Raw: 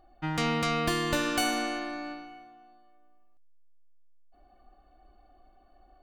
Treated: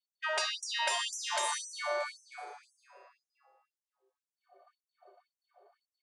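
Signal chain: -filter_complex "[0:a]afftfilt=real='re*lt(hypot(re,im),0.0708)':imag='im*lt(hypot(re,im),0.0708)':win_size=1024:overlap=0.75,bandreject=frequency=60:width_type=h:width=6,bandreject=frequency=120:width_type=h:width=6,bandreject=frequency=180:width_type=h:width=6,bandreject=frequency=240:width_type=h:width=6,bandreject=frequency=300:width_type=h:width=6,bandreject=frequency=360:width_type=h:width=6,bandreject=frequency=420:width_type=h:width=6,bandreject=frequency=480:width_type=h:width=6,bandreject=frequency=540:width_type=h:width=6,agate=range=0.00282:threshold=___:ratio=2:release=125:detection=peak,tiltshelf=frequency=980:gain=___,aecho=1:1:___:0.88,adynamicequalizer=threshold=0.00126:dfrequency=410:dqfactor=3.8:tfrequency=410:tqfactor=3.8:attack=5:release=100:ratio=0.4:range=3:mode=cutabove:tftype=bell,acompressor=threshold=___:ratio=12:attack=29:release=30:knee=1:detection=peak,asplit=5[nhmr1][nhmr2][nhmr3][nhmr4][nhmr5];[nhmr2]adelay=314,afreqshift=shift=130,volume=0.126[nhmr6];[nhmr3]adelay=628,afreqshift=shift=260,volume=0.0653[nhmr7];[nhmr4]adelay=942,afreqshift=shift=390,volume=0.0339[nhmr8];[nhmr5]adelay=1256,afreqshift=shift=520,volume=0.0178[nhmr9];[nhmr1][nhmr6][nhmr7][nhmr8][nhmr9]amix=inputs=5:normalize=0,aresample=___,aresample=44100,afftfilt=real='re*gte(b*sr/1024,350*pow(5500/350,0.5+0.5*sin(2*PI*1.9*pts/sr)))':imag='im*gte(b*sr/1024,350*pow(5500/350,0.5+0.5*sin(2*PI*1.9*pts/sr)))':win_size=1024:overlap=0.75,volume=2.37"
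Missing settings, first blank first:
0.00355, 6.5, 3.2, 0.0112, 22050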